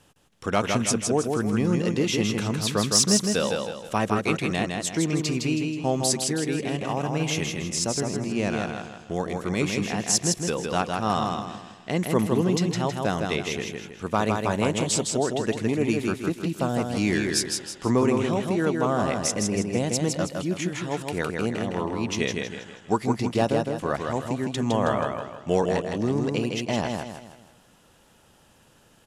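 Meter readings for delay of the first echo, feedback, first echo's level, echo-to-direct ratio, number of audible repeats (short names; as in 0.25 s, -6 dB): 0.16 s, 40%, -4.0 dB, -3.0 dB, 4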